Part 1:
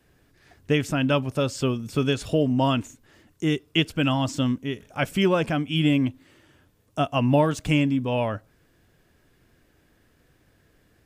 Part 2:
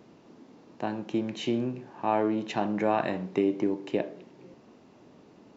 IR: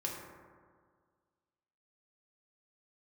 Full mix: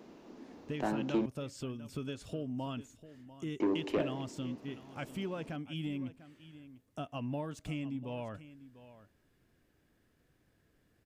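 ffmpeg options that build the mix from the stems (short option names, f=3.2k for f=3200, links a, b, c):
-filter_complex "[0:a]acompressor=threshold=-31dB:ratio=2,volume=-11.5dB,asplit=2[a][b];[b]volume=-16dB[c];[1:a]highpass=220,volume=0dB,asplit=3[d][e][f];[d]atrim=end=1.26,asetpts=PTS-STARTPTS,afade=t=out:st=1.256:d=0.004:c=hsin[g];[e]atrim=start=1.26:end=3.6,asetpts=PTS-STARTPTS,volume=0[h];[f]atrim=start=3.6,asetpts=PTS-STARTPTS,afade=t=in:d=0.004:c=hsin[i];[g][h][i]concat=n=3:v=0:a=1[j];[c]aecho=0:1:696:1[k];[a][j][k]amix=inputs=3:normalize=0,equalizer=f=220:w=0.78:g=3,asoftclip=type=tanh:threshold=-24dB"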